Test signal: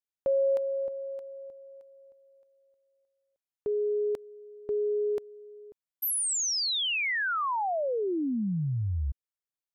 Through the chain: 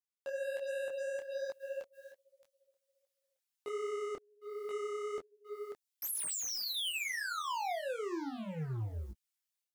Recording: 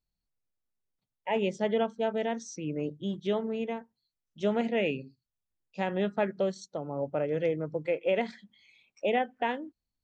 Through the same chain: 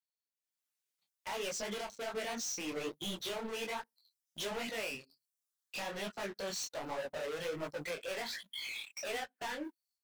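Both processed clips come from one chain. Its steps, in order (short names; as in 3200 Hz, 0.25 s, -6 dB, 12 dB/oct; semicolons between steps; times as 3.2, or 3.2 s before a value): HPF 1500 Hz 6 dB/oct; reverb removal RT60 0.68 s; high shelf 2200 Hz +5 dB; compressor 4:1, threshold -45 dBFS; sample leveller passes 3; AGC gain up to 14 dB; limiter -23 dBFS; hard clip -33.5 dBFS; detuned doubles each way 45 cents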